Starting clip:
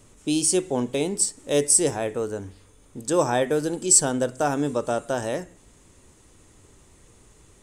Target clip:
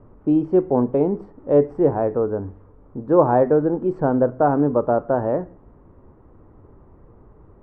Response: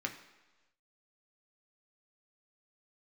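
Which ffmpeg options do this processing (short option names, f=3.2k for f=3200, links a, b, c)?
-af "lowpass=f=1.2k:w=0.5412,lowpass=f=1.2k:w=1.3066,volume=6.5dB"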